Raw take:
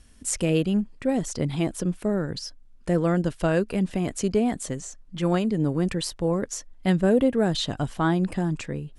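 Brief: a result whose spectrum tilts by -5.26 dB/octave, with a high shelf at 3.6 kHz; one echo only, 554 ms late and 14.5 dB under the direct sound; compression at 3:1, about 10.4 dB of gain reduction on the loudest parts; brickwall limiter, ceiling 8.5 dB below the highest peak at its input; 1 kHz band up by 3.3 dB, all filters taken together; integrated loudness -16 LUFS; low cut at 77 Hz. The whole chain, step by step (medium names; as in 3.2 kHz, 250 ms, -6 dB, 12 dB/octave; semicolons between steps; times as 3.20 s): high-pass 77 Hz; peaking EQ 1 kHz +5 dB; treble shelf 3.6 kHz -4 dB; compression 3:1, threshold -30 dBFS; peak limiter -26 dBFS; delay 554 ms -14.5 dB; trim +19.5 dB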